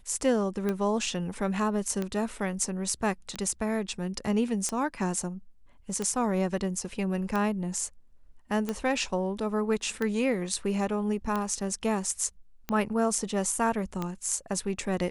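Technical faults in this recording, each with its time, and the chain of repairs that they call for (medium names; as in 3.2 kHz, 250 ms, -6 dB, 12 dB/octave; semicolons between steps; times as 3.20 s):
tick 45 rpm -17 dBFS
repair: de-click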